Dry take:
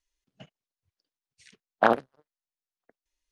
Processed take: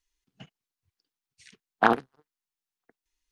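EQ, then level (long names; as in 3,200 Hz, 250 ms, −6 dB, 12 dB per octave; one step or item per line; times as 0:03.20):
parametric band 580 Hz −15 dB 0.25 octaves
+2.0 dB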